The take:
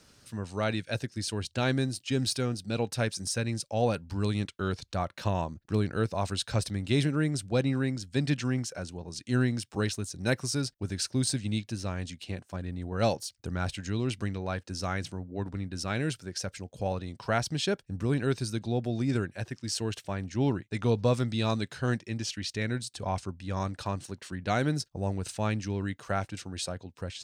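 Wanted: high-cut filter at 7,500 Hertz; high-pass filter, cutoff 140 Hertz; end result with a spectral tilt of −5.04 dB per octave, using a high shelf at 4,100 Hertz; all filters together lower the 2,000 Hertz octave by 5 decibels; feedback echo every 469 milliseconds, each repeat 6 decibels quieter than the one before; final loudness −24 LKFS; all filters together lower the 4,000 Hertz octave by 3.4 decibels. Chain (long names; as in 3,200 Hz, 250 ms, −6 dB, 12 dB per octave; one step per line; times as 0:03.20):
high-pass filter 140 Hz
low-pass filter 7,500 Hz
parametric band 2,000 Hz −7 dB
parametric band 4,000 Hz −7.5 dB
high-shelf EQ 4,100 Hz +8 dB
repeating echo 469 ms, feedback 50%, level −6 dB
level +8 dB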